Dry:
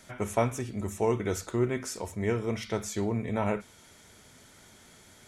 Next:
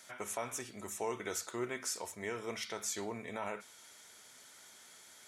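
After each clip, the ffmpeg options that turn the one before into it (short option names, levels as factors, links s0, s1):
-af "highpass=f=1300:p=1,alimiter=level_in=1.33:limit=0.0631:level=0:latency=1:release=93,volume=0.75,equalizer=f=2500:w=1.5:g=-2.5,volume=1.12"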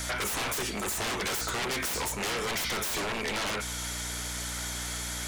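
-filter_complex "[0:a]aeval=exprs='val(0)+0.00158*(sin(2*PI*60*n/s)+sin(2*PI*2*60*n/s)/2+sin(2*PI*3*60*n/s)/3+sin(2*PI*4*60*n/s)/4+sin(2*PI*5*60*n/s)/5)':c=same,aeval=exprs='0.0562*sin(PI/2*7.94*val(0)/0.0562)':c=same,acrossover=split=350|2400[s0][s1][s2];[s0]acompressor=threshold=0.0112:ratio=4[s3];[s1]acompressor=threshold=0.0251:ratio=4[s4];[s2]acompressor=threshold=0.0282:ratio=4[s5];[s3][s4][s5]amix=inputs=3:normalize=0"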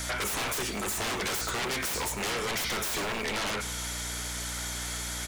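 -af "aecho=1:1:102|204|306|408|510|612:0.141|0.0848|0.0509|0.0305|0.0183|0.011"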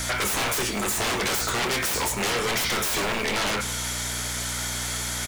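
-filter_complex "[0:a]acrusher=bits=8:mix=0:aa=0.000001,asplit=2[s0][s1];[s1]adelay=25,volume=0.299[s2];[s0][s2]amix=inputs=2:normalize=0,volume=1.88"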